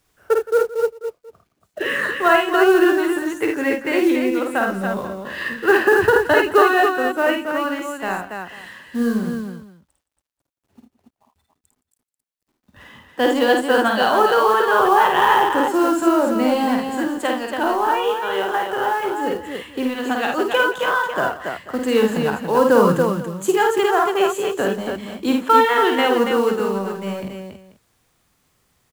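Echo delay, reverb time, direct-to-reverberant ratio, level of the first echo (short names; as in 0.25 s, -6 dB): 51 ms, none, none, -3.5 dB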